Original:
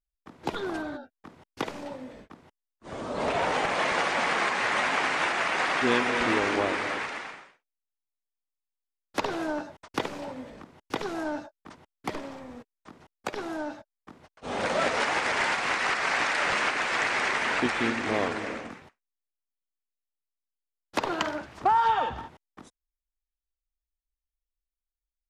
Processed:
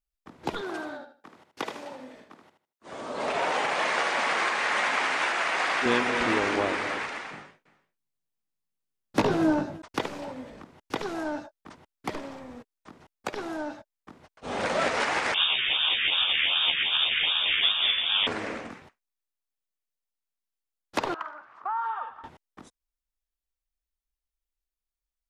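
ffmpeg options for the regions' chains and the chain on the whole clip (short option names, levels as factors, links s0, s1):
-filter_complex "[0:a]asettb=1/sr,asplit=3[s0][s1][s2];[s0]atrim=end=0.614[s3];[s1]atrim=start=0.61:end=5.86,asetpts=PTS-STARTPTS,afade=t=in:d=0.004:c=qsin,afade=t=out:st=5.246:d=0.004:c=qsin,highpass=f=400:p=1,aecho=1:1:78|156|234:0.398|0.0916|0.0211,atrim=end_sample=231525[s4];[s2]atrim=start=5.856[s5];[s3][s4]acrossfade=d=0.004:c1=hsin:c2=qsin[s6];[s6][s5]acrossfade=d=0.004:c1=qsin:c2=hsin,asettb=1/sr,asplit=3[s7][s8][s9];[s7]atrim=end=7.314[s10];[s8]atrim=start=7.31:end=9.82,asetpts=PTS-STARTPTS,afade=t=in:d=0.004:c=qsin,afade=t=out:st=2.506:d=0.004:c=qsin,equalizer=f=150:w=0.51:g=13.5,asplit=2[s11][s12];[s12]adelay=19,volume=0.562[s13];[s11][s13]amix=inputs=2:normalize=0,atrim=end_sample=110691,aecho=1:1:343:0.0891,atrim=end_sample=110691[s14];[s9]atrim=start=9.816[s15];[s10][s14]acrossfade=d=0.004:c1=hsin:c2=qsin[s16];[s16][s15]acrossfade=d=0.004:c1=qsin:c2=hsin,asettb=1/sr,asplit=3[s17][s18][s19];[s17]atrim=end=15.344[s20];[s18]atrim=start=15.34:end=18.27,asetpts=PTS-STARTPTS,afade=t=in:d=0.004:c=qsin,afade=t=out:st=2.926:d=0.004:c=qsin,acrusher=samples=21:mix=1:aa=0.000001:lfo=1:lforange=12.6:lforate=2.6,asplit=2[s21][s22];[s22]adelay=13,volume=0.794[s23];[s21][s23]amix=inputs=2:normalize=0,atrim=end_sample=129213,lowpass=f=3100:t=q:w=0.5098,lowpass=f=3100:t=q:w=0.6013,lowpass=f=3100:t=q:w=0.9,lowpass=f=3100:t=q:w=2.563,afreqshift=-3700[s24];[s19]atrim=start=18.266[s25];[s20][s24]acrossfade=d=0.004:c1=hsin:c2=qsin[s26];[s26][s25]acrossfade=d=0.004:c1=qsin:c2=hsin,asettb=1/sr,asplit=3[s27][s28][s29];[s27]atrim=end=21.144[s30];[s28]atrim=start=21.14:end=22.24,asetpts=PTS-STARTPTS,afade=t=in:d=0.004:c=qsin,afade=t=out:st=1.096:d=0.004:c=qsin,acompressor=mode=upward:threshold=0.0178:ratio=2.5:attack=3.2:release=140:knee=2.83:detection=peak,bandpass=f=1200:t=q:w=4.1[s31];[s29]atrim=start=22.236[s32];[s30][s31]acrossfade=d=0.004:c1=hsin:c2=qsin[s33];[s33][s32]acrossfade=d=0.004:c1=qsin:c2=hsin"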